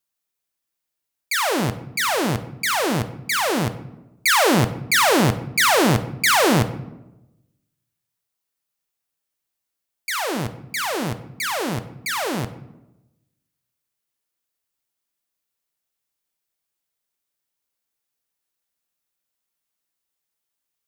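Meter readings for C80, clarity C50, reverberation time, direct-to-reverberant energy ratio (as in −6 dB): 15.5 dB, 13.5 dB, 0.95 s, 9.5 dB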